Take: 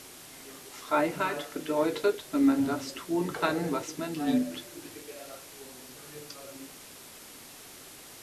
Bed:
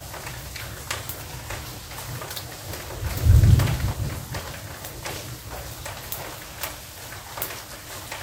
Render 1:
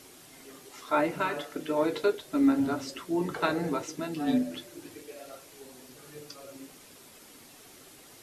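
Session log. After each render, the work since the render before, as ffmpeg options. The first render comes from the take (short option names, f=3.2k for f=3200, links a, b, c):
-af "afftdn=nr=6:nf=-49"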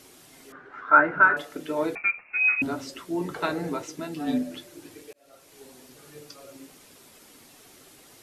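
-filter_complex "[0:a]asettb=1/sr,asplit=3[a][b][c];[a]atrim=end=0.524[d];[b]atrim=start=0.52:end=1.37,asetpts=PTS-STARTPTS,afade=t=in:d=0.004:c=qsin,afade=t=out:st=0.846:d=0.004:c=qsin,lowpass=f=1.5k:t=q:w=10[e];[c]atrim=start=1.366[f];[d][e]acrossfade=d=0.004:c1=hsin:c2=qsin[g];[g][f]acrossfade=d=0.004:c1=qsin:c2=hsin,asettb=1/sr,asplit=3[h][i][j];[h]atrim=end=1.954[k];[i]atrim=start=1.95:end=2.62,asetpts=PTS-STARTPTS,afade=t=in:d=0.004:c=qsin,afade=t=out:st=0.666:d=0.004:c=qsin,lowpass=f=2.4k:t=q:w=0.5098,lowpass=f=2.4k:t=q:w=0.6013,lowpass=f=2.4k:t=q:w=0.9,lowpass=f=2.4k:t=q:w=2.563,afreqshift=-2800[l];[j]atrim=start=2.616[m];[k][l]acrossfade=d=0.004:c1=hsin:c2=qsin[n];[n][m]acrossfade=d=0.004:c1=qsin:c2=hsin,asplit=2[o][p];[o]atrim=end=5.13,asetpts=PTS-STARTPTS,afade=t=out:st=5.126:d=0.004:c=hsin[q];[p]atrim=start=5.13,asetpts=PTS-STARTPTS,afade=t=in:d=0.48[r];[q][r]concat=n=2:v=0:a=1"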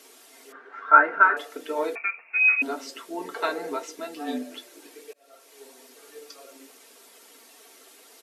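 -af "highpass=f=320:w=0.5412,highpass=f=320:w=1.3066,aecho=1:1:4.4:0.46"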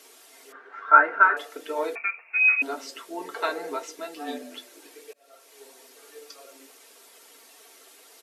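-af "equalizer=f=200:w=1:g=-5.5,bandreject=f=50:t=h:w=6,bandreject=f=100:t=h:w=6,bandreject=f=150:t=h:w=6,bandreject=f=200:t=h:w=6,bandreject=f=250:t=h:w=6"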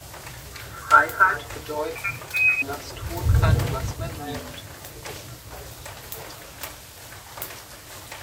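-filter_complex "[1:a]volume=-4dB[a];[0:a][a]amix=inputs=2:normalize=0"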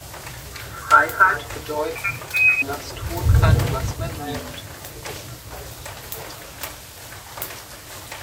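-af "volume=3.5dB,alimiter=limit=-2dB:level=0:latency=1"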